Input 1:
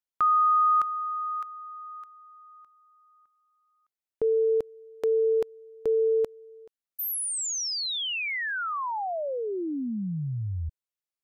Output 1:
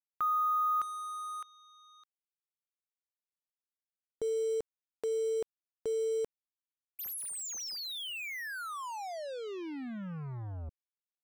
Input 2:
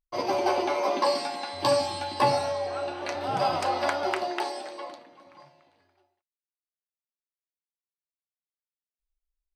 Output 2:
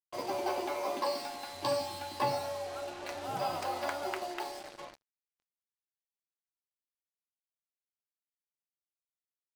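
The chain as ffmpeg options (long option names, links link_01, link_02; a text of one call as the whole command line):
ffmpeg -i in.wav -af "acrusher=bits=5:mix=0:aa=0.5,volume=-8.5dB" out.wav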